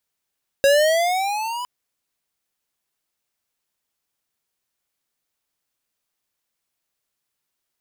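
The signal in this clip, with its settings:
pitch glide with a swell square, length 1.01 s, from 546 Hz, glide +10.5 semitones, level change −15 dB, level −13.5 dB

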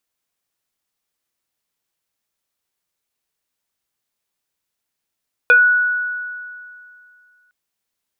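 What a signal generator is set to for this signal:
two-operator FM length 2.01 s, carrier 1,470 Hz, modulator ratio 0.67, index 0.75, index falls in 0.19 s exponential, decay 2.37 s, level −6 dB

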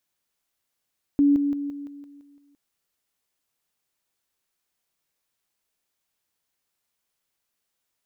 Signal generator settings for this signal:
level staircase 285 Hz −14.5 dBFS, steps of −6 dB, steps 8, 0.17 s 0.00 s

